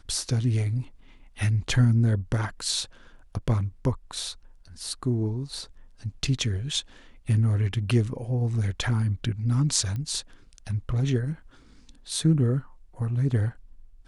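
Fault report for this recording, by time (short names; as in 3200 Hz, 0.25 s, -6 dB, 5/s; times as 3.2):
9.96 pop -22 dBFS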